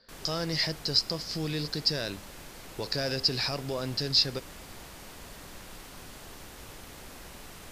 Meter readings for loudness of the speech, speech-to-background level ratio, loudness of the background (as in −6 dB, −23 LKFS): −29.0 LKFS, 16.5 dB, −45.5 LKFS